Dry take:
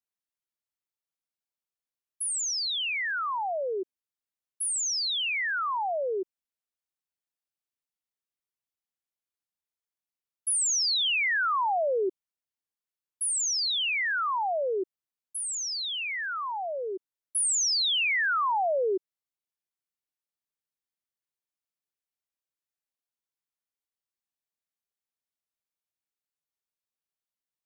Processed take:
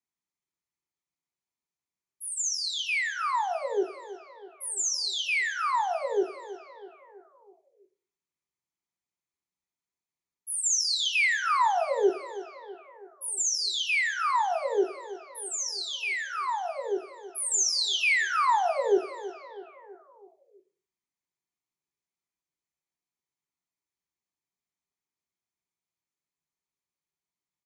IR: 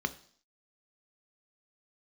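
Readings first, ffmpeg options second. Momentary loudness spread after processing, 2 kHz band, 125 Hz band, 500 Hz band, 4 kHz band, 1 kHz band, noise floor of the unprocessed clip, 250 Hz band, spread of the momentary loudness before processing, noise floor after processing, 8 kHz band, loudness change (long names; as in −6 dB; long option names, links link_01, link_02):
18 LU, +0.5 dB, can't be measured, +1.5 dB, −2.0 dB, +2.0 dB, below −85 dBFS, +5.5 dB, 11 LU, below −85 dBFS, −0.5 dB, 0.0 dB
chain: -filter_complex "[0:a]aecho=1:1:325|650|975|1300|1625:0.178|0.096|0.0519|0.028|0.0151,asplit=2[link_01][link_02];[1:a]atrim=start_sample=2205,highshelf=frequency=7300:gain=7.5[link_03];[link_02][link_03]afir=irnorm=-1:irlink=0,volume=0dB[link_04];[link_01][link_04]amix=inputs=2:normalize=0,aresample=22050,aresample=44100,volume=-1dB"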